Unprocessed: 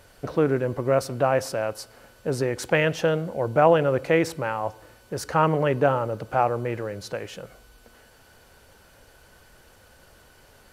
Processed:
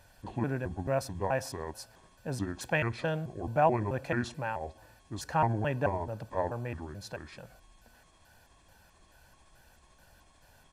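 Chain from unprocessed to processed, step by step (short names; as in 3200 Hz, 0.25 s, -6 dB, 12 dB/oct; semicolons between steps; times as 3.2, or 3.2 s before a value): trilling pitch shifter -5.5 st, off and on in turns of 0.217 s; comb 1.2 ms, depth 56%; gain -8 dB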